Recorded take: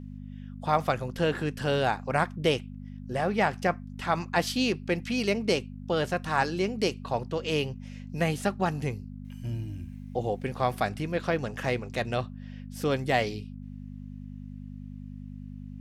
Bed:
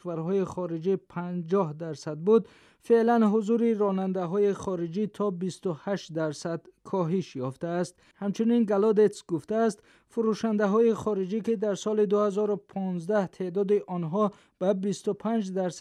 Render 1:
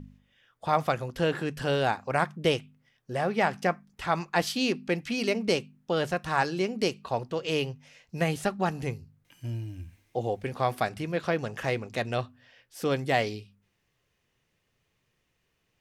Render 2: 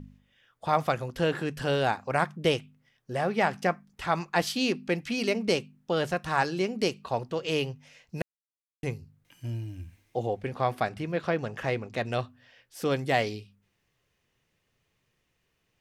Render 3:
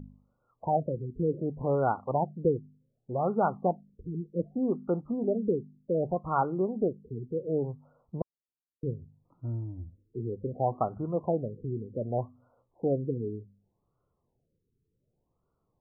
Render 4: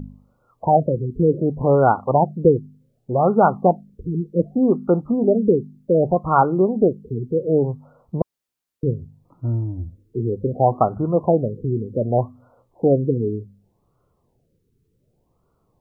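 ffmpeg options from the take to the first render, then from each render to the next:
-af "bandreject=f=50:t=h:w=4,bandreject=f=100:t=h:w=4,bandreject=f=150:t=h:w=4,bandreject=f=200:t=h:w=4,bandreject=f=250:t=h:w=4"
-filter_complex "[0:a]asettb=1/sr,asplit=3[a][b][c];[a]atrim=end=10.264[d];[b]atrim=start=10.26:end=12.06,asetpts=PTS-STARTPTS,afade=t=in:d=0.004:c=qsin,afade=t=out:st=1.796:d=0.004:c=qsin,highshelf=f=5.4k:g=-9[e];[c]atrim=start=12.056[f];[d][e]acrossfade=d=0.004:c1=hsin:c2=qsin[g];[g][f]acrossfade=d=0.004:c1=qsin:c2=hsin,asplit=3[h][i][j];[h]atrim=end=8.22,asetpts=PTS-STARTPTS,afade=t=out:st=8.216:d=0.004:c=hsin[k];[i]atrim=start=8.22:end=8.83,asetpts=PTS-STARTPTS,volume=0[l];[j]atrim=start=8.83,asetpts=PTS-STARTPTS,afade=t=in:d=0.004:c=hsin[m];[k][l][m]concat=n=3:v=0:a=1"
-af "afftfilt=real='re*lt(b*sr/1024,460*pow(1500/460,0.5+0.5*sin(2*PI*0.66*pts/sr)))':imag='im*lt(b*sr/1024,460*pow(1500/460,0.5+0.5*sin(2*PI*0.66*pts/sr)))':win_size=1024:overlap=0.75"
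-af "volume=11.5dB"

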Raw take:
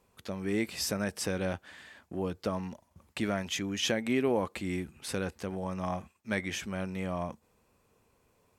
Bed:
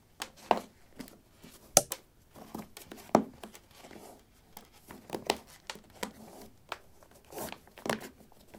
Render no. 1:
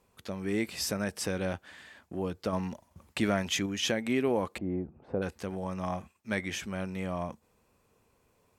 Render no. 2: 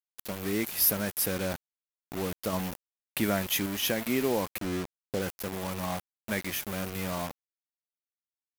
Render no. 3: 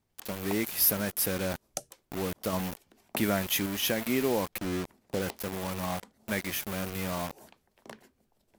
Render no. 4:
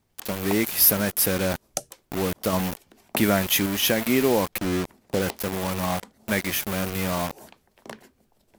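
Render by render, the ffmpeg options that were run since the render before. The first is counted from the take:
-filter_complex "[0:a]asettb=1/sr,asplit=3[a][b][c];[a]atrim=end=4.584[d];[b]atrim=start=4.58:end=5.22,asetpts=PTS-STARTPTS,afade=t=in:d=0.004:c=qsin,afade=t=out:st=0.636:d=0.004:c=qsin,lowpass=f=670:t=q:w=1.9[e];[c]atrim=start=5.216[f];[d][e]acrossfade=d=0.004:c1=hsin:c2=qsin[g];[g][f]acrossfade=d=0.004:c1=qsin:c2=hsin,asplit=3[h][i][j];[h]atrim=end=2.532[k];[i]atrim=start=2.528:end=3.662,asetpts=PTS-STARTPTS,volume=3.5dB[l];[j]atrim=start=3.658[m];[k][l]acrossfade=d=0.004:c1=hsin:c2=hsin[n];[n][m]acrossfade=d=0.004:c1=hsin:c2=hsin"
-af "aexciter=amount=13.8:drive=7.4:freq=11k,acrusher=bits=5:mix=0:aa=0.000001"
-filter_complex "[1:a]volume=-14dB[a];[0:a][a]amix=inputs=2:normalize=0"
-af "volume=7dB"

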